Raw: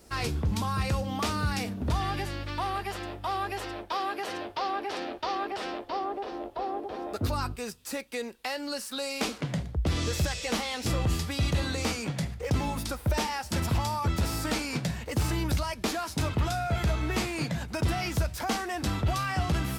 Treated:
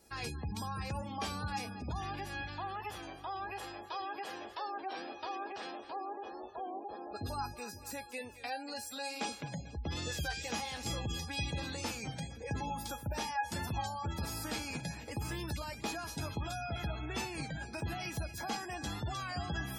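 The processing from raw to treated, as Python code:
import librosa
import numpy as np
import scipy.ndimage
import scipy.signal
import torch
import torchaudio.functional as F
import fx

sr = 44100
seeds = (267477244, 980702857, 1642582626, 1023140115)

p1 = fx.highpass(x, sr, hz=65.0, slope=6)
p2 = fx.high_shelf(p1, sr, hz=9500.0, db=4.5)
p3 = fx.comb_fb(p2, sr, f0_hz=830.0, decay_s=0.33, harmonics='all', damping=0.0, mix_pct=90)
p4 = p3 + fx.echo_split(p3, sr, split_hz=490.0, low_ms=517, high_ms=231, feedback_pct=52, wet_db=-13, dry=0)
p5 = fx.spec_gate(p4, sr, threshold_db=-25, keep='strong')
p6 = fx.record_warp(p5, sr, rpm=33.33, depth_cents=100.0)
y = p6 * 10.0 ** (9.0 / 20.0)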